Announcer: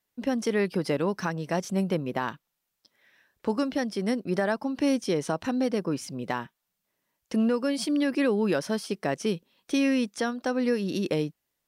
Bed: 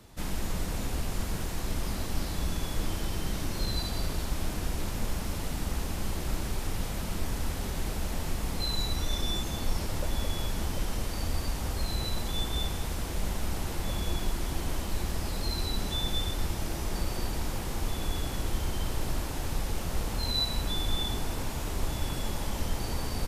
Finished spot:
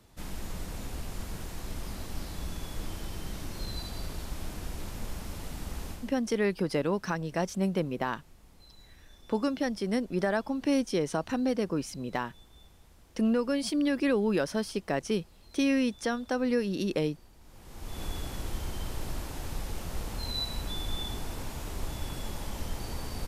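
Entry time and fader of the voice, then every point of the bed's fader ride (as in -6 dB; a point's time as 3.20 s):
5.85 s, -2.0 dB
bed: 5.91 s -6 dB
6.23 s -25 dB
17.39 s -25 dB
18.01 s -4.5 dB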